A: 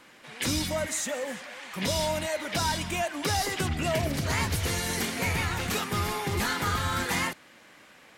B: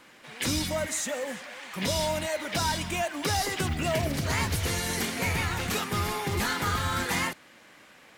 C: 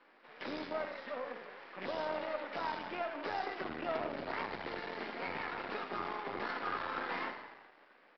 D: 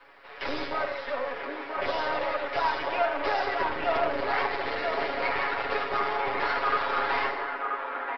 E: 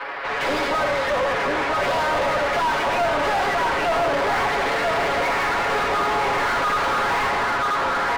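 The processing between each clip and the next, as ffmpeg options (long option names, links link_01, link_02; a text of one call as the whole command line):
ffmpeg -i in.wav -af "acrusher=bits=7:mode=log:mix=0:aa=0.000001" out.wav
ffmpeg -i in.wav -filter_complex "[0:a]asplit=9[link_01][link_02][link_03][link_04][link_05][link_06][link_07][link_08][link_09];[link_02]adelay=84,afreqshift=-30,volume=-8.5dB[link_10];[link_03]adelay=168,afreqshift=-60,volume=-12.7dB[link_11];[link_04]adelay=252,afreqshift=-90,volume=-16.8dB[link_12];[link_05]adelay=336,afreqshift=-120,volume=-21dB[link_13];[link_06]adelay=420,afreqshift=-150,volume=-25.1dB[link_14];[link_07]adelay=504,afreqshift=-180,volume=-29.3dB[link_15];[link_08]adelay=588,afreqshift=-210,volume=-33.4dB[link_16];[link_09]adelay=672,afreqshift=-240,volume=-37.6dB[link_17];[link_01][link_10][link_11][link_12][link_13][link_14][link_15][link_16][link_17]amix=inputs=9:normalize=0,aresample=11025,aeval=exprs='max(val(0),0)':channel_layout=same,aresample=44100,acrossover=split=260 2000:gain=0.0631 1 0.2[link_18][link_19][link_20];[link_18][link_19][link_20]amix=inputs=3:normalize=0,volume=-2.5dB" out.wav
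ffmpeg -i in.wav -filter_complex "[0:a]aecho=1:1:7.2:0.86,acrossover=split=100|310|2800[link_01][link_02][link_03][link_04];[link_02]aeval=exprs='abs(val(0))':channel_layout=same[link_05];[link_03]aecho=1:1:982:0.631[link_06];[link_01][link_05][link_06][link_04]amix=inputs=4:normalize=0,volume=8.5dB" out.wav
ffmpeg -i in.wav -filter_complex "[0:a]asplit=2[link_01][link_02];[link_02]highpass=frequency=720:poles=1,volume=35dB,asoftclip=type=tanh:threshold=-13.5dB[link_03];[link_01][link_03]amix=inputs=2:normalize=0,lowpass=frequency=1600:poles=1,volume=-6dB" out.wav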